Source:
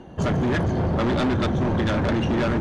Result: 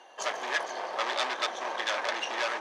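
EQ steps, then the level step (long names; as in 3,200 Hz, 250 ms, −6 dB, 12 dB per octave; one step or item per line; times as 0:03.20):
Bessel high-pass filter 950 Hz, order 4
parametric band 5,600 Hz +4.5 dB 0.62 octaves
notch filter 1,400 Hz, Q 10
+1.5 dB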